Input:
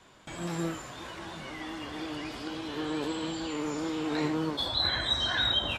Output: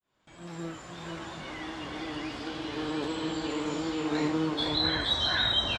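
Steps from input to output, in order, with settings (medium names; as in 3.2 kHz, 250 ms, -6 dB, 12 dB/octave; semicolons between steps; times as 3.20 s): fade-in on the opening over 1.19 s; low-pass 7.7 kHz 12 dB/octave; on a send: delay 473 ms -4 dB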